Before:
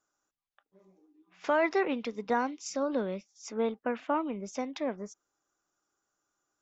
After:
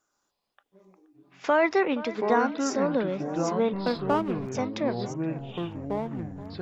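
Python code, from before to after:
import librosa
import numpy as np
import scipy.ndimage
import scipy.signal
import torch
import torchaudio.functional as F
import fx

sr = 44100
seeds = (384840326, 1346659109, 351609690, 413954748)

y = fx.backlash(x, sr, play_db=-33.5, at=(3.73, 4.52))
y = fx.echo_pitch(y, sr, ms=112, semitones=-6, count=3, db_per_echo=-6.0)
y = fx.echo_wet_lowpass(y, sr, ms=474, feedback_pct=43, hz=2300.0, wet_db=-16)
y = y * librosa.db_to_amplitude(4.5)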